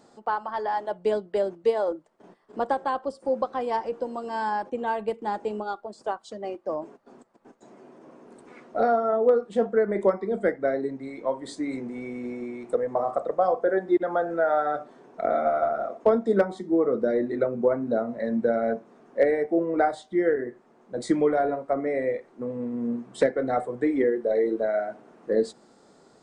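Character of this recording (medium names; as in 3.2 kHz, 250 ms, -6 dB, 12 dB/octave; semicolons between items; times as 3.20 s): noise floor -58 dBFS; spectral tilt -2.0 dB/octave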